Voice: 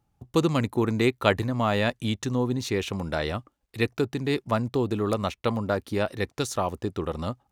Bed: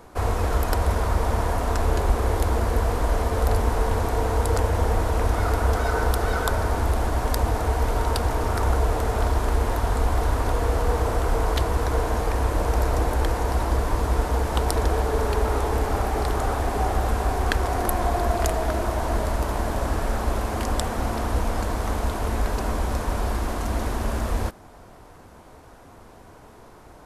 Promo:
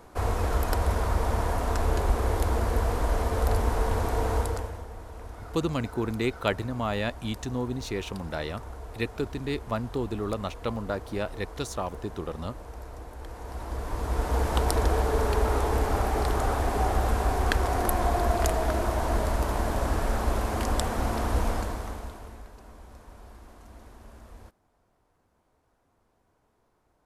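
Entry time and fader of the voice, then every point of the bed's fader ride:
5.20 s, −5.0 dB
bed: 0:04.38 −3.5 dB
0:04.87 −19.5 dB
0:13.15 −19.5 dB
0:14.41 −2 dB
0:21.50 −2 dB
0:22.52 −23 dB

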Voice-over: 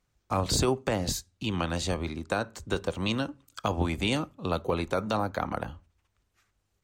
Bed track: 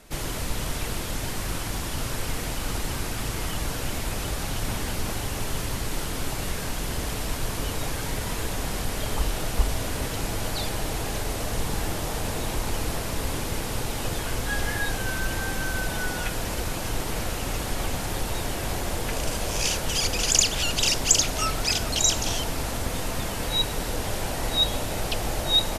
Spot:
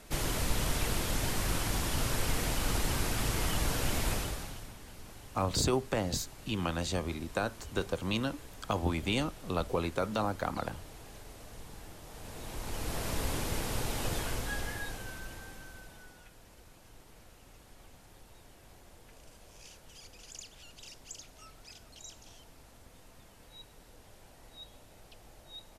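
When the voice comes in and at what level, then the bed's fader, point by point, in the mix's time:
5.05 s, −3.5 dB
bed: 0:04.12 −2 dB
0:04.74 −20.5 dB
0:12.03 −20.5 dB
0:13.08 −5 dB
0:14.18 −5 dB
0:16.29 −27.5 dB

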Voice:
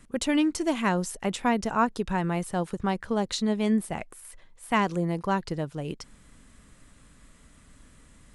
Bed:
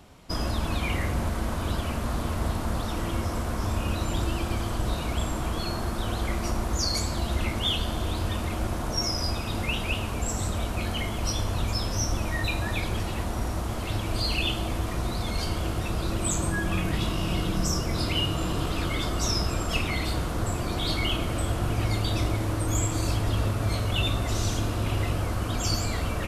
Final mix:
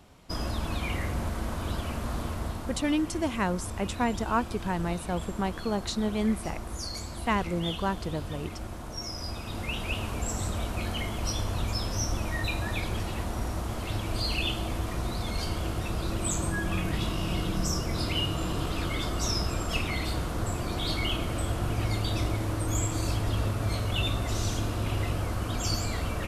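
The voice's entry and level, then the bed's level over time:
2.55 s, −3.0 dB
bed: 0:02.21 −3.5 dB
0:02.91 −9.5 dB
0:08.99 −9.5 dB
0:10.04 −2.5 dB

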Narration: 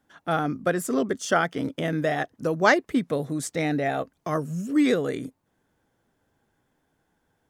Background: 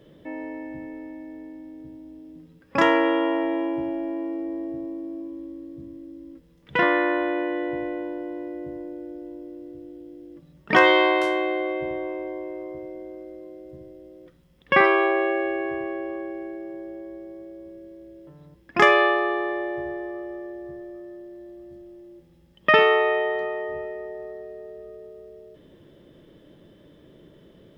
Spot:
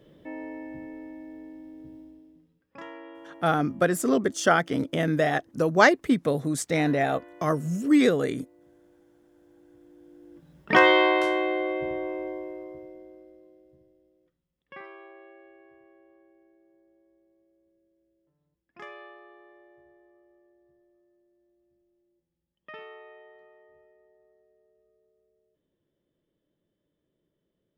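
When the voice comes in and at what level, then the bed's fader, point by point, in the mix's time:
3.15 s, +1.5 dB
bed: 0:02.00 −3.5 dB
0:02.83 −24 dB
0:09.21 −24 dB
0:10.60 −1.5 dB
0:12.27 −1.5 dB
0:14.83 −27.5 dB

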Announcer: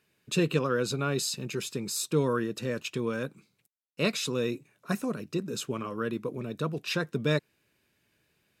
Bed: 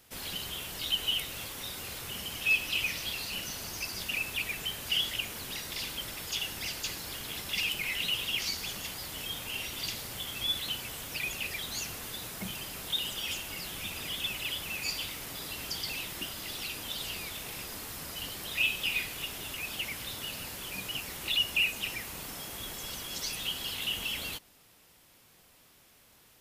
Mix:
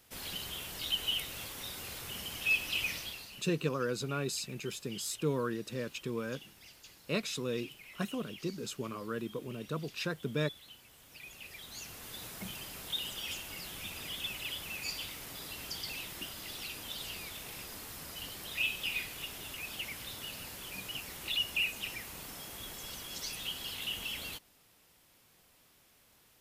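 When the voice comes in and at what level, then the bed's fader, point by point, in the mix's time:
3.10 s, −6.0 dB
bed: 0:02.95 −3 dB
0:03.53 −19 dB
0:10.90 −19 dB
0:12.23 −4.5 dB

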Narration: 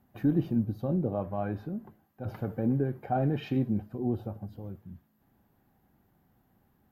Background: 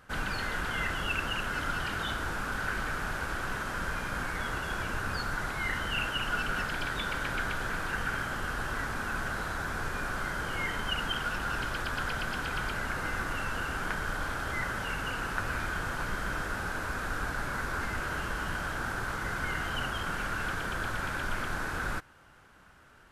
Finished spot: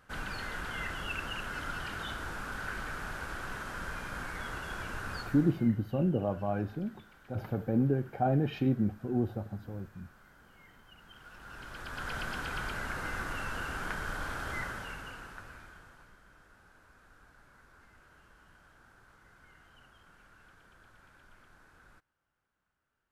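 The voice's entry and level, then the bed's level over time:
5.10 s, 0.0 dB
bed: 0:05.18 −5.5 dB
0:05.80 −26 dB
0:10.95 −26 dB
0:12.16 −3.5 dB
0:14.57 −3.5 dB
0:16.22 −26.5 dB

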